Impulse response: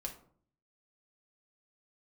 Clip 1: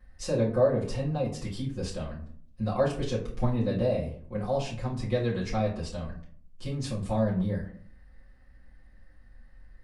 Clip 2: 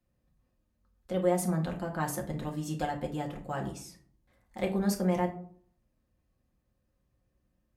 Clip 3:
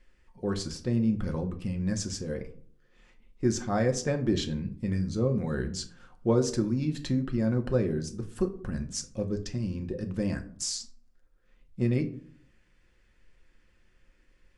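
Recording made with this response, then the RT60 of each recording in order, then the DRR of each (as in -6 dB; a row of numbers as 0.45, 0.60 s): 2; 0.55, 0.55, 0.55 s; -9.0, 0.0, 4.5 dB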